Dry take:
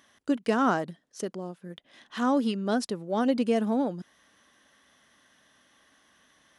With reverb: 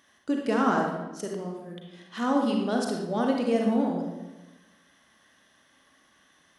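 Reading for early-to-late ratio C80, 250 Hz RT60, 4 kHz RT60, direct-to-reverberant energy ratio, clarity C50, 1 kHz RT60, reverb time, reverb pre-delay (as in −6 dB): 5.0 dB, 1.3 s, 0.70 s, 0.5 dB, 2.0 dB, 1.0 s, 1.1 s, 34 ms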